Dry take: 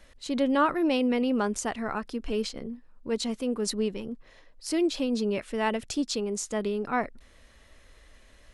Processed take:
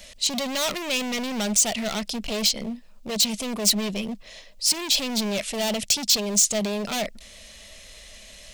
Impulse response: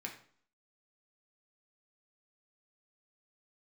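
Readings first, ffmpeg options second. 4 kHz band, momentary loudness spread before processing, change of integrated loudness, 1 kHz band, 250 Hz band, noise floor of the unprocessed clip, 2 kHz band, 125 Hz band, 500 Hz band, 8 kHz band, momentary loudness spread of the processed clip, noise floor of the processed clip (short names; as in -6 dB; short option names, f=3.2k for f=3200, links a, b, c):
+14.0 dB, 14 LU, +5.5 dB, -2.5 dB, -1.0 dB, -56 dBFS, +3.5 dB, +4.5 dB, -1.0 dB, +16.0 dB, 11 LU, -47 dBFS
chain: -af "volume=33.5dB,asoftclip=hard,volume=-33.5dB,equalizer=f=200:t=o:w=0.33:g=9,equalizer=f=315:t=o:w=0.33:g=-7,equalizer=f=630:t=o:w=0.33:g=10,equalizer=f=10k:t=o:w=0.33:g=-7,aexciter=amount=4.8:drive=4.9:freq=2.2k,volume=4dB"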